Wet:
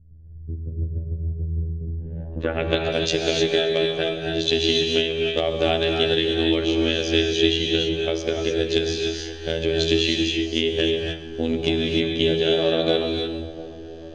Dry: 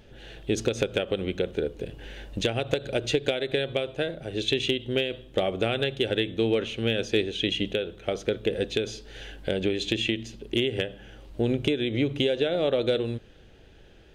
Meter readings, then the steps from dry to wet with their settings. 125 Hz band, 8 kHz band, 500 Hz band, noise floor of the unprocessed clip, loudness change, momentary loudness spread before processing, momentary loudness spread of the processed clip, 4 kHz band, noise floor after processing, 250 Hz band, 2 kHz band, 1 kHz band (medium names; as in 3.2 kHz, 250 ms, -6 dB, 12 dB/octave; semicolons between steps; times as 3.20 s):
+5.0 dB, +6.5 dB, +5.0 dB, -52 dBFS, +5.5 dB, 9 LU, 10 LU, +7.5 dB, -37 dBFS, +5.0 dB, +4.5 dB, +5.5 dB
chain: robot voice 81.6 Hz; low-pass sweep 110 Hz -> 5.6 kHz, 1.75–2.89 s; two-band feedback delay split 1.1 kHz, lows 695 ms, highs 136 ms, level -15.5 dB; gated-style reverb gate 330 ms rising, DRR 0.5 dB; trim +3.5 dB